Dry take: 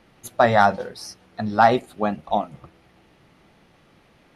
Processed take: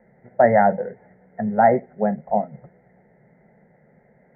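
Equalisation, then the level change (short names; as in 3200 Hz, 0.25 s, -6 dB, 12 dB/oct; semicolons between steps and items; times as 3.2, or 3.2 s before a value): HPF 51 Hz; Chebyshev low-pass 2100 Hz, order 8; fixed phaser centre 310 Hz, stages 6; +4.5 dB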